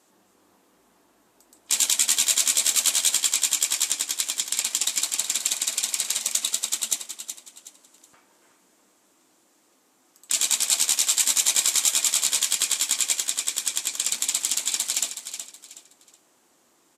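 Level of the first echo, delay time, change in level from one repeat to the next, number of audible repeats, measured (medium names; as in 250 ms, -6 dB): -9.5 dB, 371 ms, -10.0 dB, 3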